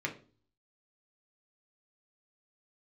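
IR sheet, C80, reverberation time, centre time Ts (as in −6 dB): 18.0 dB, 0.40 s, 11 ms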